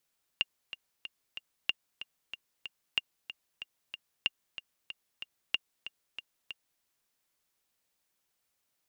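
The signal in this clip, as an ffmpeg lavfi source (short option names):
-f lavfi -i "aevalsrc='pow(10,(-13.5-13*gte(mod(t,4*60/187),60/187))/20)*sin(2*PI*2810*mod(t,60/187))*exp(-6.91*mod(t,60/187)/0.03)':d=6.41:s=44100"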